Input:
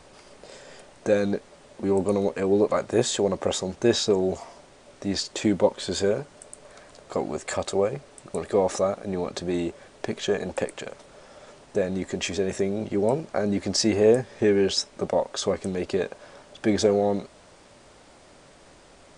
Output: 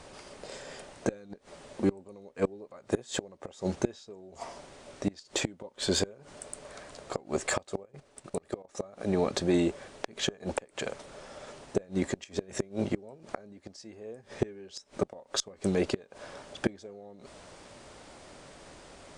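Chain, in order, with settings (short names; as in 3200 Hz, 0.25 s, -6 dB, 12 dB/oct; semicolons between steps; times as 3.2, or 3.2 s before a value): flipped gate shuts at -16 dBFS, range -27 dB; 7.83–8.75 level quantiser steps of 16 dB; added harmonics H 8 -37 dB, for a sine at -12 dBFS; gain +1.5 dB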